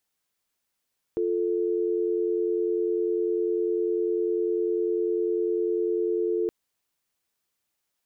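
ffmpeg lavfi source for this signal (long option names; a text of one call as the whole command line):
ffmpeg -f lavfi -i "aevalsrc='0.0531*(sin(2*PI*350*t)+sin(2*PI*440*t))':duration=5.32:sample_rate=44100" out.wav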